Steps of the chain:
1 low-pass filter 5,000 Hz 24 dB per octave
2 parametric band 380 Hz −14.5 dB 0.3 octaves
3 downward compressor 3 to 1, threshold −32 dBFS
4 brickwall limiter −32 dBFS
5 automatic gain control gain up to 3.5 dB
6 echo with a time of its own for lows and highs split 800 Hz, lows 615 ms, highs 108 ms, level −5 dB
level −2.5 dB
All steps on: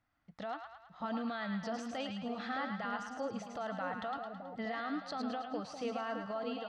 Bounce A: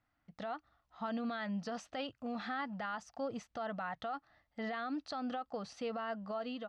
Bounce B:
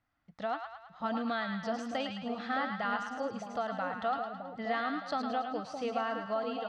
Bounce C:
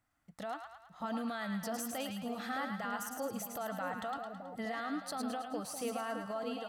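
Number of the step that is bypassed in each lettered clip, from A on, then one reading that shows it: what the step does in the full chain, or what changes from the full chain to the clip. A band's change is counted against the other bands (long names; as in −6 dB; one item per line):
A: 6, echo-to-direct ratio −3.5 dB to none audible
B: 4, average gain reduction 2.5 dB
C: 1, 8 kHz band +12.5 dB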